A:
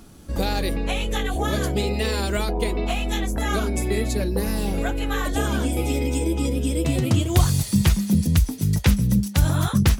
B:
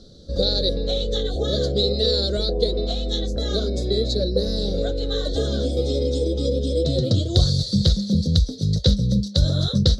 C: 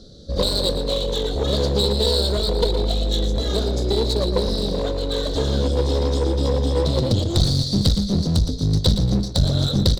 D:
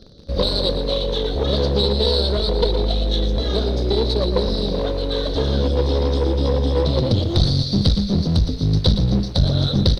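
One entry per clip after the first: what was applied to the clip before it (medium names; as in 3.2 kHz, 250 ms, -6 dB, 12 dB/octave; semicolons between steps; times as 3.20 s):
FFT filter 160 Hz 0 dB, 320 Hz -4 dB, 530 Hz +10 dB, 920 Hz -22 dB, 1.4 kHz -10 dB, 2.6 kHz -23 dB, 3.9 kHz +14 dB, 13 kHz -30 dB
one-sided clip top -24 dBFS; on a send: feedback delay 116 ms, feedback 35%, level -10 dB; on the sum: trim +2.5 dB
in parallel at -5 dB: bit crusher 6-bit; on the sum: Savitzky-Golay filter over 15 samples; trim -2.5 dB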